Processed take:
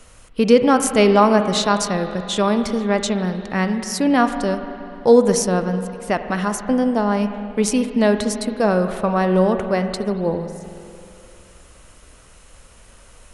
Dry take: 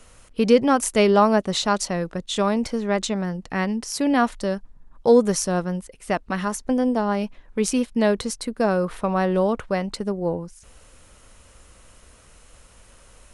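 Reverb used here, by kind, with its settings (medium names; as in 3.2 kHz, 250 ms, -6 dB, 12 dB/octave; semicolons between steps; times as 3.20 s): spring tank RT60 2.7 s, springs 43/49 ms, chirp 35 ms, DRR 8 dB; trim +3 dB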